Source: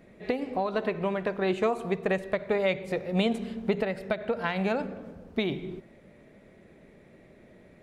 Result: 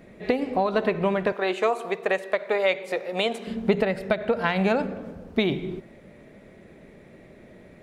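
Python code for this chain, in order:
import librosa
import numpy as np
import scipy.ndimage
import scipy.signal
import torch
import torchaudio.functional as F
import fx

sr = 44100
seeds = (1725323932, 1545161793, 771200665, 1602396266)

y = fx.highpass(x, sr, hz=460.0, slope=12, at=(1.32, 3.47))
y = y * librosa.db_to_amplitude(5.5)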